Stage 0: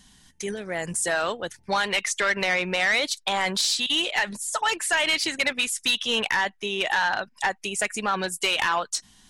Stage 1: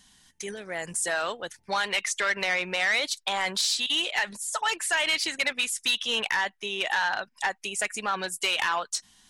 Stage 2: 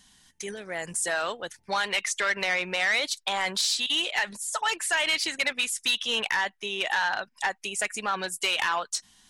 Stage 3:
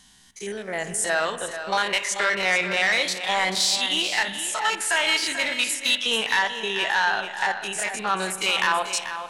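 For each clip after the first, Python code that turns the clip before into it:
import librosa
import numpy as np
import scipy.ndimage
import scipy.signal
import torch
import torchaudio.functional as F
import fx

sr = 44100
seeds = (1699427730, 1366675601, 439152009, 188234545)

y1 = fx.low_shelf(x, sr, hz=400.0, db=-7.5)
y1 = F.gain(torch.from_numpy(y1), -2.0).numpy()
y2 = y1
y3 = fx.spec_steps(y2, sr, hold_ms=50)
y3 = y3 + 10.0 ** (-10.5 / 20.0) * np.pad(y3, (int(438 * sr / 1000.0), 0))[:len(y3)]
y3 = fx.rev_spring(y3, sr, rt60_s=2.0, pass_ms=(32,), chirp_ms=50, drr_db=11.5)
y3 = F.gain(torch.from_numpy(y3), 5.5).numpy()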